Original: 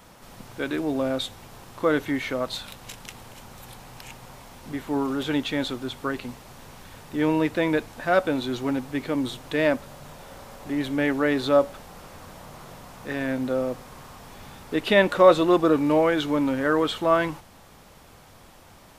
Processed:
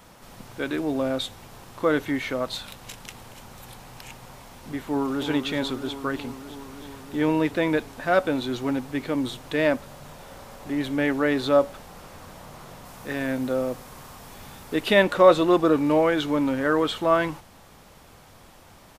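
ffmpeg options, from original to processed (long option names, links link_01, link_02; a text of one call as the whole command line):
ffmpeg -i in.wav -filter_complex "[0:a]asplit=2[link_01][link_02];[link_02]afade=type=in:start_time=4.81:duration=0.01,afade=type=out:start_time=5.27:duration=0.01,aecho=0:1:320|640|960|1280|1600|1920|2240|2560|2880|3200|3520|3840:0.375837|0.30067|0.240536|0.192429|0.153943|0.123154|0.0985235|0.0788188|0.0630551|0.050444|0.0403552|0.0322842[link_03];[link_01][link_03]amix=inputs=2:normalize=0,asettb=1/sr,asplit=3[link_04][link_05][link_06];[link_04]atrim=end=12.854[link_07];[link_05]atrim=start=12.85:end=15.03,asetpts=PTS-STARTPTS,afade=type=in:duration=0.004:curve=qsin,afade=type=out:start_time=2.176:duration=0.004:curve=qsin,highshelf=frequency=7500:gain=6.5[link_08];[link_06]atrim=start=15.026[link_09];[link_07][link_08]acrossfade=duration=0.004:curve1=hsin:curve2=qsin[link_10];[link_10][link_09]acrossfade=duration=0.004:curve1=qsin:curve2=hsin" out.wav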